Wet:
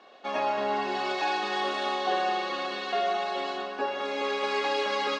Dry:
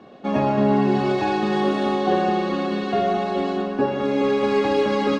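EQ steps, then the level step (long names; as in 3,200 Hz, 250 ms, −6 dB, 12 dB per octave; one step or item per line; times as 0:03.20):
band-pass filter 660–6,000 Hz
high-shelf EQ 3,300 Hz +8.5 dB
−3.0 dB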